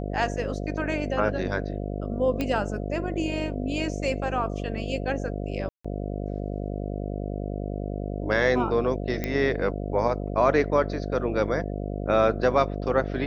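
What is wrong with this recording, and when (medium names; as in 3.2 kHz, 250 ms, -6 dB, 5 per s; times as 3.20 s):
buzz 50 Hz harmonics 14 -31 dBFS
2.41 s: pop -14 dBFS
5.69–5.84 s: dropout 155 ms
9.24 s: pop -13 dBFS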